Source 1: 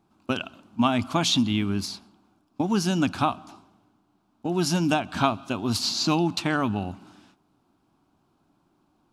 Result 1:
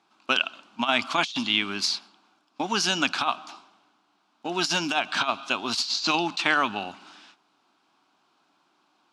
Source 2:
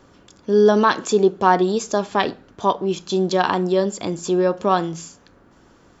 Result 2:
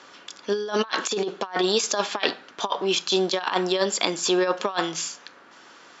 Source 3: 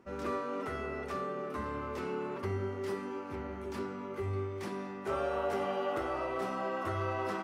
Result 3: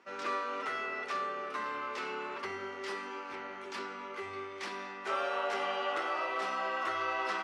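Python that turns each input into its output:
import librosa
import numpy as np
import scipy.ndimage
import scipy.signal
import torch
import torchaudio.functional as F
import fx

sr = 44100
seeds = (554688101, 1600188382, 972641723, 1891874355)

y = fx.tilt_shelf(x, sr, db=-10.0, hz=750.0)
y = fx.over_compress(y, sr, threshold_db=-22.0, ratio=-0.5)
y = fx.bandpass_edges(y, sr, low_hz=220.0, high_hz=5200.0)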